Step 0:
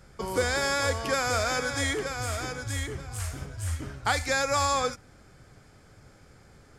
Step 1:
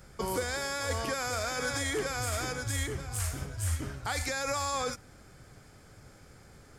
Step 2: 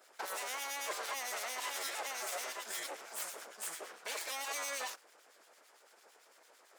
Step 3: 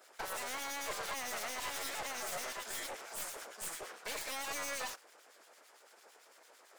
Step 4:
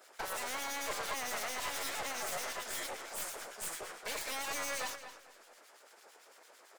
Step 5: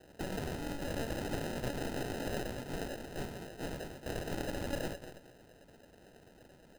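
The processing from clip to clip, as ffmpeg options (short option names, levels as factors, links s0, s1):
-af "highshelf=f=10000:g=9,alimiter=limit=0.0794:level=0:latency=1:release=35"
-filter_complex "[0:a]acrossover=split=1300[s0][s1];[s0]aeval=exprs='val(0)*(1-0.7/2+0.7/2*cos(2*PI*8.9*n/s))':c=same[s2];[s1]aeval=exprs='val(0)*(1-0.7/2-0.7/2*cos(2*PI*8.9*n/s))':c=same[s3];[s2][s3]amix=inputs=2:normalize=0,aeval=exprs='abs(val(0))':c=same,highpass=f=450:w=0.5412,highpass=f=450:w=1.3066,volume=1.12"
-af "aeval=exprs='clip(val(0),-1,0.00596)':c=same,volume=1.26"
-filter_complex "[0:a]asplit=2[s0][s1];[s1]adelay=226,lowpass=f=4400:p=1,volume=0.299,asplit=2[s2][s3];[s3]adelay=226,lowpass=f=4400:p=1,volume=0.25,asplit=2[s4][s5];[s5]adelay=226,lowpass=f=4400:p=1,volume=0.25[s6];[s0][s2][s4][s6]amix=inputs=4:normalize=0,volume=1.19"
-af "acrusher=samples=39:mix=1:aa=0.000001,volume=1.12"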